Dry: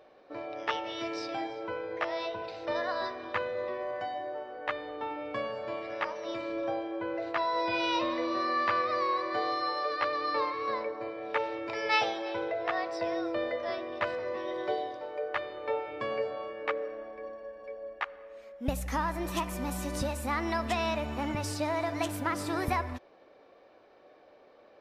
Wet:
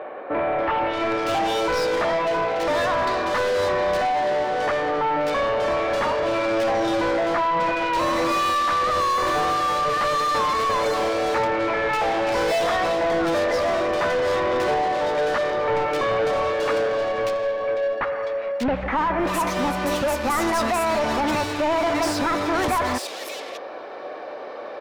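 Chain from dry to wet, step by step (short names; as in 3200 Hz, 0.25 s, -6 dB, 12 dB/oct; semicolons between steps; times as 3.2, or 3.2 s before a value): overdrive pedal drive 34 dB, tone 2300 Hz, clips at -14 dBFS; bands offset in time lows, highs 0.59 s, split 2600 Hz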